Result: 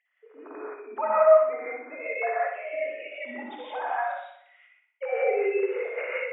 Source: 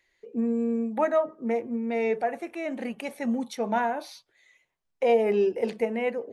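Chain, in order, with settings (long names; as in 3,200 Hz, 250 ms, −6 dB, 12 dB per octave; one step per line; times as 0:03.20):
three sine waves on the formant tracks
high-pass filter 860 Hz 12 dB per octave
flutter between parallel walls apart 10.4 metres, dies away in 0.67 s
reverb whose tail is shaped and stops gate 200 ms rising, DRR −7 dB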